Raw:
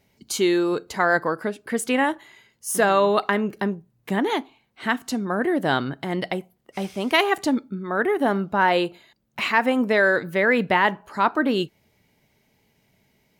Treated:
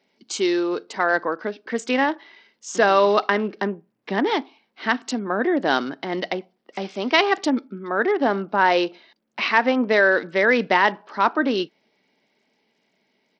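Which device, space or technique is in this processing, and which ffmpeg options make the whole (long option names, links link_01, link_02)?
Bluetooth headset: -af "highpass=frequency=220:width=0.5412,highpass=frequency=220:width=1.3066,dynaudnorm=framelen=220:gausssize=17:maxgain=6dB,aresample=16000,aresample=44100,volume=-1dB" -ar 44100 -c:a sbc -b:a 64k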